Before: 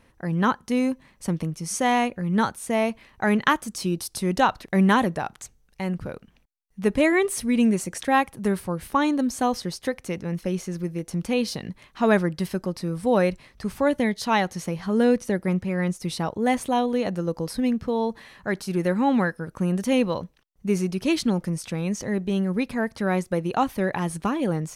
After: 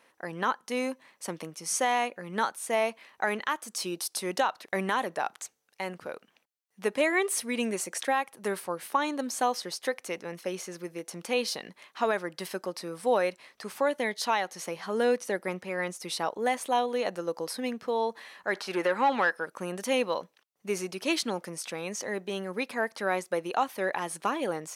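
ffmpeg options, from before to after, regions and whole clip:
ffmpeg -i in.wav -filter_complex "[0:a]asettb=1/sr,asplit=3[link_01][link_02][link_03];[link_01]atrim=end=18.544[link_04];[link_02]atrim=start=18.54:end=19.46,asetpts=PTS-STARTPTS,afade=type=in:duration=0.004:curve=qsin,afade=type=out:start_time=0.916:duration=0.004:curve=qsin,acrossover=split=5000[link_05][link_06];[link_06]acompressor=threshold=-51dB:ratio=4:attack=1:release=60[link_07];[link_05][link_07]amix=inputs=2:normalize=0,highshelf=frequency=9500:gain=6,asplit=2[link_08][link_09];[link_09]highpass=frequency=720:poles=1,volume=15dB,asoftclip=type=tanh:threshold=-9.5dB[link_10];[link_08][link_10]amix=inputs=2:normalize=0,lowpass=frequency=2400:poles=1,volume=-6dB[link_11];[link_03]atrim=start=19.456[link_12];[link_04][link_11]acrossfade=duration=0.004:curve1=hsin:curve2=qsin[link_13];[link_13][link_12]acrossfade=duration=0.004:curve1=qsin:curve2=hsin,highpass=480,alimiter=limit=-15dB:level=0:latency=1:release=308" out.wav

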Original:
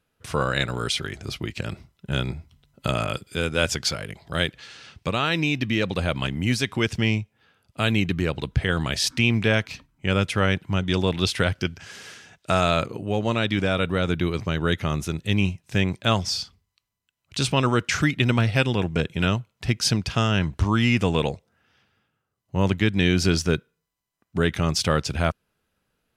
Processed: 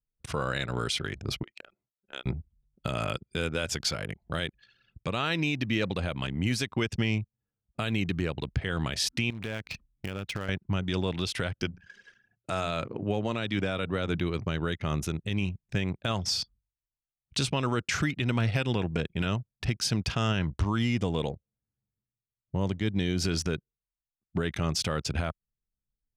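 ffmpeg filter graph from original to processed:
ffmpeg -i in.wav -filter_complex "[0:a]asettb=1/sr,asplit=3[link_01][link_02][link_03];[link_01]atrim=end=1.434[link_04];[link_02]atrim=start=1.43:end=2.26,asetpts=PTS-STARTPTS,afade=type=in:duration=0.004:curve=qsin,afade=type=out:start_time=0.826:duration=0.004:curve=qsin,highpass=550,acompressor=threshold=-50dB:ratio=1.5:attack=3.2:release=140:knee=1:detection=peak[link_05];[link_03]atrim=start=2.256[link_06];[link_04][link_05]acrossfade=duration=0.004:curve1=hsin:curve2=qsin[link_07];[link_07][link_06]acrossfade=duration=0.004:curve1=qsin:curve2=hsin,asettb=1/sr,asplit=3[link_08][link_09][link_10];[link_08]atrim=end=9.304[link_11];[link_09]atrim=start=9.3:end=10.49,asetpts=PTS-STARTPTS,afade=type=in:duration=0.004:curve=qsin,afade=type=out:start_time=1.186:duration=0.004:curve=qsin,lowpass=7100,acompressor=threshold=-29dB:ratio=20:attack=3.2:release=140:knee=1:detection=peak,acrusher=bits=3:mode=log:mix=0:aa=0.000001[link_12];[link_10]atrim=start=10.486[link_13];[link_11][link_12]acrossfade=duration=0.004:curve1=hsin:curve2=qsin[link_14];[link_14][link_13]acrossfade=duration=0.004:curve1=qsin:curve2=hsin,asettb=1/sr,asplit=3[link_15][link_16][link_17];[link_15]atrim=end=11.624[link_18];[link_16]atrim=start=11.62:end=14.2,asetpts=PTS-STARTPTS,afade=type=in:duration=0.004:curve=qsin,afade=type=out:start_time=2.576:duration=0.004:curve=qsin,highpass=frequency=78:width=0.5412,highpass=frequency=78:width=1.3066,bandreject=frequency=60:width_type=h:width=6,bandreject=frequency=120:width_type=h:width=6,bandreject=frequency=180:width_type=h:width=6[link_19];[link_17]atrim=start=14.196[link_20];[link_18][link_19]acrossfade=duration=0.004:curve1=hsin:curve2=qsin[link_21];[link_21][link_20]acrossfade=duration=0.004:curve1=qsin:curve2=hsin,asettb=1/sr,asplit=3[link_22][link_23][link_24];[link_22]atrim=end=20.784[link_25];[link_23]atrim=start=20.78:end=23.21,asetpts=PTS-STARTPTS,afade=type=in:duration=0.004:curve=qsin,afade=type=out:start_time=2.426:duration=0.004:curve=qsin,equalizer=frequency=1500:width=1.3:gain=-5.5,bandreject=frequency=2600:width=7.1[link_26];[link_24]atrim=start=23.206[link_27];[link_25][link_26]acrossfade=duration=0.004:curve1=hsin:curve2=qsin[link_28];[link_28][link_27]acrossfade=duration=0.004:curve1=qsin:curve2=hsin,anlmdn=2.51,alimiter=limit=-17.5dB:level=0:latency=1:release=222" out.wav

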